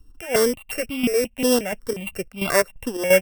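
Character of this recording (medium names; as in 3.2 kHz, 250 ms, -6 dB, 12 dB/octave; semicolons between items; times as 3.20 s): a buzz of ramps at a fixed pitch in blocks of 16 samples; chopped level 2.9 Hz, depth 65%, duty 60%; notches that jump at a steady rate 5.6 Hz 610–1800 Hz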